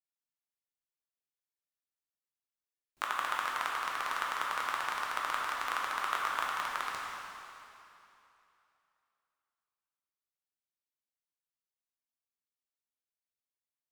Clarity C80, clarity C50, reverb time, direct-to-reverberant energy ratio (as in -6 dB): 0.0 dB, -1.5 dB, 2.9 s, -3.5 dB